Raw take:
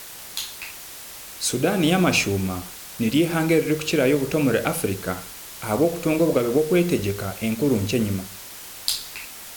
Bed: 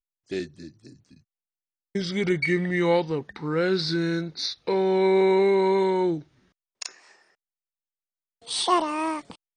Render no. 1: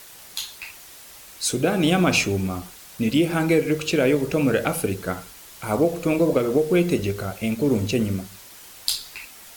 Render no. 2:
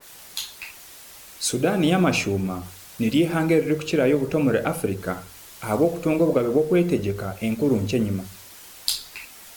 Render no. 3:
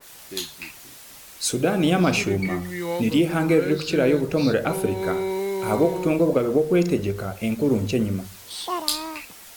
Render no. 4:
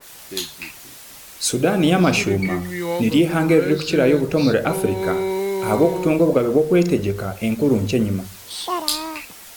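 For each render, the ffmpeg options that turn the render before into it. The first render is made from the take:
-af "afftdn=nr=6:nf=-39"
-af "bandreject=f=46.86:t=h:w=4,bandreject=f=93.72:t=h:w=4,bandreject=f=140.58:t=h:w=4,adynamicequalizer=threshold=0.0112:dfrequency=1900:dqfactor=0.7:tfrequency=1900:tqfactor=0.7:attack=5:release=100:ratio=0.375:range=3:mode=cutabove:tftype=highshelf"
-filter_complex "[1:a]volume=-6.5dB[a];[0:a][a]amix=inputs=2:normalize=0"
-af "volume=3.5dB,alimiter=limit=-1dB:level=0:latency=1"

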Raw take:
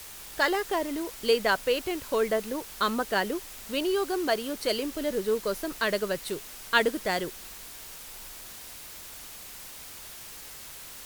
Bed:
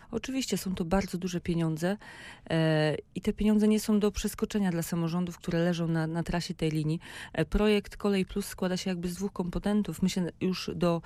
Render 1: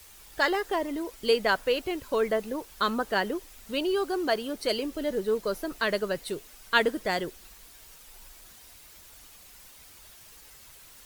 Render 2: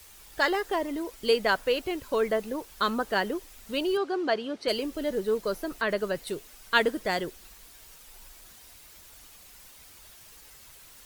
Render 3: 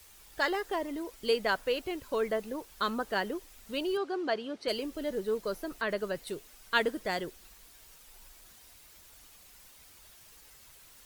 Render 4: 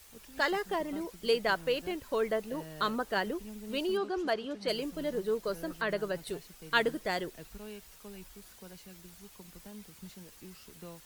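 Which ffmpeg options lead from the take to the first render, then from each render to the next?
-af "afftdn=nr=9:nf=-44"
-filter_complex "[0:a]asettb=1/sr,asplit=3[a][b][c];[a]atrim=end=3.974[d];[b]atrim=start=3.97:end=4.68,asetpts=PTS-STARTPTS,afade=t=in:d=0.004:c=qsin,afade=t=out:st=0.706:d=0.004:c=qsin,highpass=130,lowpass=4.4k[e];[c]atrim=start=4.676[f];[d][e]acrossfade=d=0.004:c1=hsin:c2=qsin[g];[g][f]acrossfade=d=0.004:c1=qsin:c2=hsin,asettb=1/sr,asplit=3[h][i][j];[h]atrim=end=5.534[k];[i]atrim=start=5.53:end=6.27,asetpts=PTS-STARTPTS,afade=t=in:d=0.004:c=qsin,afade=t=out:st=0.736:d=0.004:c=qsin,acrossover=split=2600[l][m];[m]acompressor=threshold=-41dB:ratio=4:attack=1:release=60[n];[l][n]amix=inputs=2:normalize=0[o];[j]atrim=start=6.266[p];[k][o]acrossfade=d=0.004:c1=hsin:c2=qsin[q];[q][p]acrossfade=d=0.004:c1=qsin:c2=hsin"
-af "volume=-4.5dB"
-filter_complex "[1:a]volume=-21dB[a];[0:a][a]amix=inputs=2:normalize=0"

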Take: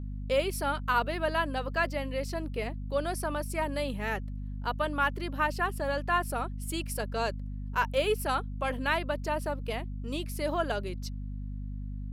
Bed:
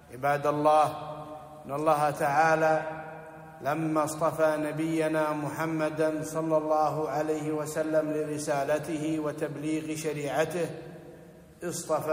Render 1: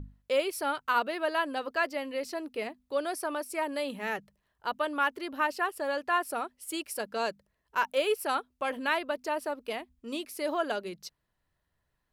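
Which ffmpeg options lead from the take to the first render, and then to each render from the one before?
-af "bandreject=f=50:t=h:w=6,bandreject=f=100:t=h:w=6,bandreject=f=150:t=h:w=6,bandreject=f=200:t=h:w=6,bandreject=f=250:t=h:w=6"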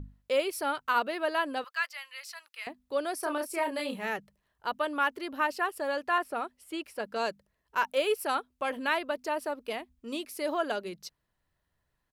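-filter_complex "[0:a]asettb=1/sr,asplit=3[a][b][c];[a]atrim=end=1.644[d];[b]atrim=start=1.64:end=2.67,asetpts=PTS-STARTPTS,afade=t=in:d=0.004:c=qsin,afade=t=out:st=1.026:d=0.004:c=qsin,highpass=f=1.2k:w=0.5412,highpass=f=1.2k:w=1.3066[e];[c]atrim=start=2.666[f];[d][e]acrossfade=d=0.004:c1=hsin:c2=qsin[g];[g][f]acrossfade=d=0.004:c1=qsin:c2=hsin,asplit=3[h][i][j];[h]afade=t=out:st=3.22:d=0.02[k];[i]asplit=2[l][m];[m]adelay=30,volume=-4dB[n];[l][n]amix=inputs=2:normalize=0,afade=t=in:st=3.22:d=0.02,afade=t=out:st=4.05:d=0.02[o];[j]afade=t=in:st=4.05:d=0.02[p];[k][o][p]amix=inputs=3:normalize=0,asettb=1/sr,asplit=3[q][r][s];[q]atrim=end=6.184[t];[r]atrim=start=6.18:end=7.16,asetpts=PTS-STARTPTS,afade=t=in:d=0.004:c=qsin,afade=t=out:st=0.976:d=0.004:c=qsin,acrossover=split=3400[u][v];[v]acompressor=threshold=-53dB:ratio=4:attack=1:release=60[w];[u][w]amix=inputs=2:normalize=0[x];[s]atrim=start=7.156[y];[t][x]acrossfade=d=0.004:c1=hsin:c2=qsin[z];[z][y]acrossfade=d=0.004:c1=qsin:c2=hsin"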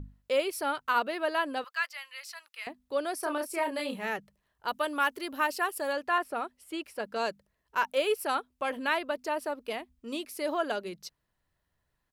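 -filter_complex "[0:a]asettb=1/sr,asplit=3[a][b][c];[a]atrim=end=4.684[d];[b]atrim=start=4.68:end=5.93,asetpts=PTS-STARTPTS,afade=t=in:d=0.004:c=qsin,afade=t=out:st=1.246:d=0.004:c=qsin,aemphasis=mode=production:type=cd[e];[c]atrim=start=5.926[f];[d][e]acrossfade=d=0.004:c1=hsin:c2=qsin[g];[g][f]acrossfade=d=0.004:c1=qsin:c2=hsin"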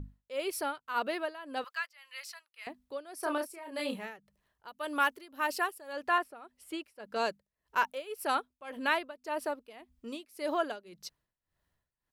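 -af "tremolo=f=1.8:d=0.87"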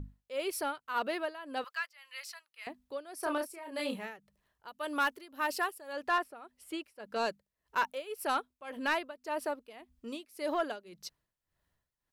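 -af "asoftclip=type=tanh:threshold=-20.5dB"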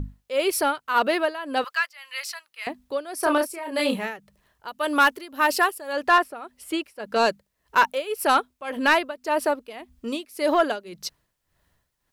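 -af "volume=12dB"

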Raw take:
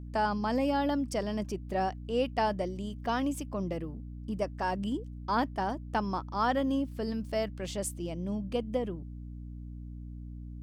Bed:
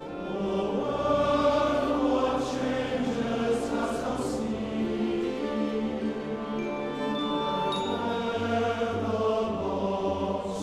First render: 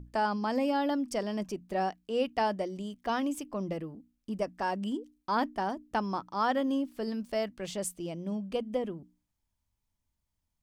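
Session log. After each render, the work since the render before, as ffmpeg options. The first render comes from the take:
-af "bandreject=f=60:t=h:w=6,bandreject=f=120:t=h:w=6,bandreject=f=180:t=h:w=6,bandreject=f=240:t=h:w=6,bandreject=f=300:t=h:w=6"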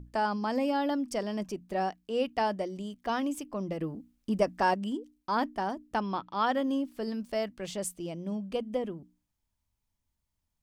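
-filter_complex "[0:a]asplit=3[a][b][c];[a]afade=t=out:st=6:d=0.02[d];[b]lowpass=f=3.3k:t=q:w=2.7,afade=t=in:st=6:d=0.02,afade=t=out:st=6.45:d=0.02[e];[c]afade=t=in:st=6.45:d=0.02[f];[d][e][f]amix=inputs=3:normalize=0,asplit=3[g][h][i];[g]atrim=end=3.812[j];[h]atrim=start=3.808:end=4.742,asetpts=PTS-STARTPTS,volume=6dB[k];[i]atrim=start=4.738[l];[j][k]acrossfade=d=0.004:c1=hsin:c2=hsin[m];[m][l]acrossfade=d=0.004:c1=hsin:c2=hsin"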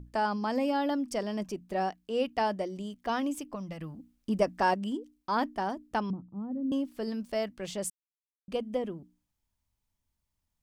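-filter_complex "[0:a]asettb=1/sr,asplit=3[a][b][c];[a]atrim=end=3.554[d];[b]atrim=start=3.55:end=3.99,asetpts=PTS-STARTPTS,afade=t=in:d=0.004:c=qsin,afade=t=out:st=0.436:d=0.004:c=qsin,equalizer=f=400:t=o:w=1.1:g=-14.5[e];[c]atrim=start=3.986[f];[d][e]acrossfade=d=0.004:c1=hsin:c2=qsin[g];[g][f]acrossfade=d=0.004:c1=qsin:c2=hsin,asettb=1/sr,asplit=3[h][i][j];[h]atrim=end=6.104[k];[i]atrim=start=6.1:end=6.72,asetpts=PTS-STARTPTS,afade=t=in:d=0.004:c=qsin,afade=t=out:st=0.616:d=0.004:c=qsin,lowpass=f=200:t=q:w=1.8[l];[j]atrim=start=6.716[m];[k][l]acrossfade=d=0.004:c1=hsin:c2=qsin[n];[n][m]acrossfade=d=0.004:c1=qsin:c2=hsin,asplit=3[o][p][q];[o]atrim=end=7.9,asetpts=PTS-STARTPTS,afade=t=out:st=7.896:d=0.004:c=hsin[r];[p]atrim=start=7.9:end=8.48,asetpts=PTS-STARTPTS,volume=0[s];[q]atrim=start=8.48,asetpts=PTS-STARTPTS,afade=t=in:d=0.004:c=hsin[t];[r][s][t]concat=n=3:v=0:a=1"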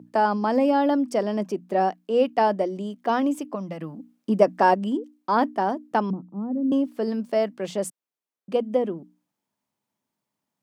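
-af "highpass=f=150:w=0.5412,highpass=f=150:w=1.3066,equalizer=f=480:w=0.3:g=9.5"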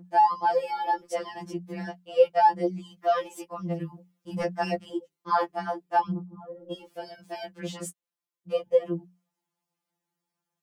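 -af "asoftclip=type=hard:threshold=-6.5dB,afftfilt=real='re*2.83*eq(mod(b,8),0)':imag='im*2.83*eq(mod(b,8),0)':win_size=2048:overlap=0.75"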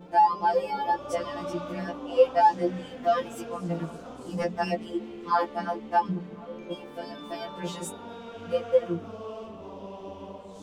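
-filter_complex "[1:a]volume=-12.5dB[a];[0:a][a]amix=inputs=2:normalize=0"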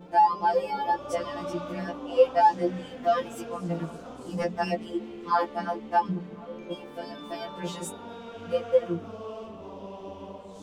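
-af anull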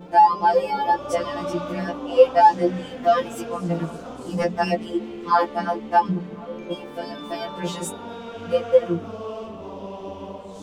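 -af "volume=6dB"

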